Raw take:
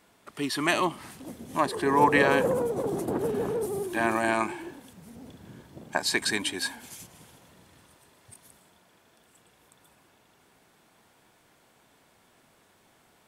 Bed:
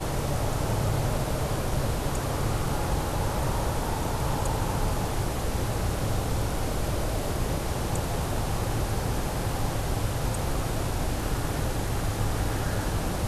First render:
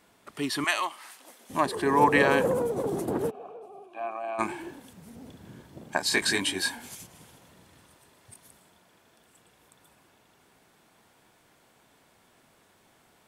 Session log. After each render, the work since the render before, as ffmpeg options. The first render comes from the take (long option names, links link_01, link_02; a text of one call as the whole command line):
ffmpeg -i in.wav -filter_complex "[0:a]asettb=1/sr,asplit=3[link_01][link_02][link_03];[link_01]atrim=end=0.644[link_04];[link_02]atrim=start=0.64:end=1.5,asetpts=PTS-STARTPTS,afade=type=in:duration=0.004:curve=qsin,afade=type=out:start_time=0.856:duration=0.004:curve=qsin,highpass=860[link_05];[link_03]atrim=start=1.496[link_06];[link_04][link_05]acrossfade=duration=0.004:curve1=hsin:curve2=qsin[link_07];[link_07][link_06]acrossfade=duration=0.004:curve1=qsin:curve2=hsin,asplit=3[link_08][link_09][link_10];[link_08]afade=type=out:start_time=3.29:duration=0.02[link_11];[link_09]asplit=3[link_12][link_13][link_14];[link_12]bandpass=frequency=730:width_type=q:width=8,volume=0dB[link_15];[link_13]bandpass=frequency=1090:width_type=q:width=8,volume=-6dB[link_16];[link_14]bandpass=frequency=2440:width_type=q:width=8,volume=-9dB[link_17];[link_15][link_16][link_17]amix=inputs=3:normalize=0,afade=type=in:start_time=3.29:duration=0.02,afade=type=out:start_time=4.38:duration=0.02[link_18];[link_10]afade=type=in:start_time=4.38:duration=0.02[link_19];[link_11][link_18][link_19]amix=inputs=3:normalize=0,asettb=1/sr,asplit=3[link_20][link_21][link_22];[link_20]atrim=end=6.094[link_23];[link_21]atrim=start=6.09:end=6.95,asetpts=PTS-STARTPTS,afade=type=in:duration=0.004:curve=qsin,afade=type=out:start_time=0.856:duration=0.004:curve=qsin,asplit=2[link_24][link_25];[link_25]adelay=21,volume=-2.5dB[link_26];[link_24][link_26]amix=inputs=2:normalize=0,atrim=end_sample=37926[link_27];[link_22]atrim=start=6.946[link_28];[link_23][link_27]acrossfade=duration=0.004:curve1=hsin:curve2=qsin[link_29];[link_29][link_28]acrossfade=duration=0.004:curve1=qsin:curve2=hsin" out.wav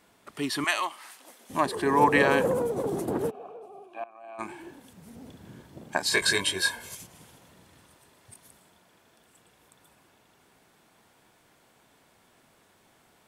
ffmpeg -i in.wav -filter_complex "[0:a]asettb=1/sr,asplit=3[link_01][link_02][link_03];[link_01]atrim=end=6.124[link_04];[link_02]atrim=start=6.12:end=6.97,asetpts=PTS-STARTPTS,afade=type=in:duration=0.004:curve=qsin,afade=type=out:start_time=0.846:duration=0.004:curve=qsin,aecho=1:1:1.9:0.71,atrim=end_sample=37485[link_05];[link_03]atrim=start=6.966[link_06];[link_04][link_05]acrossfade=duration=0.004:curve1=hsin:curve2=qsin[link_07];[link_07][link_06]acrossfade=duration=0.004:curve1=qsin:curve2=hsin,asplit=2[link_08][link_09];[link_08]atrim=end=4.04,asetpts=PTS-STARTPTS,afade=type=out:start_time=4.036:duration=0.004:curve=hsin:silence=0.1[link_10];[link_09]atrim=start=4.04,asetpts=PTS-STARTPTS,afade=type=in:duration=1.1:silence=0.1[link_11];[link_10][link_11]concat=n=2:v=0:a=1" out.wav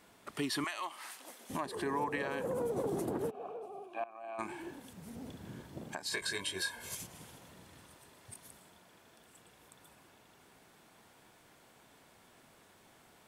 ffmpeg -i in.wav -af "acompressor=threshold=-33dB:ratio=3,alimiter=level_in=0.5dB:limit=-24dB:level=0:latency=1:release=321,volume=-0.5dB" out.wav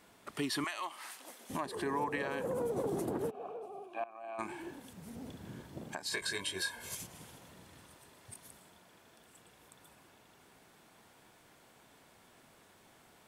ffmpeg -i in.wav -af anull out.wav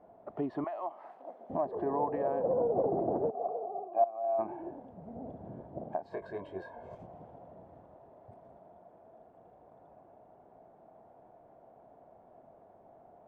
ffmpeg -i in.wav -af "lowpass=frequency=680:width_type=q:width=4.9" out.wav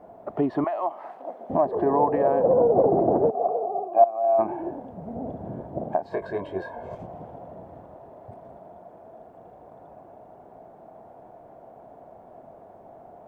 ffmpeg -i in.wav -af "volume=10.5dB" out.wav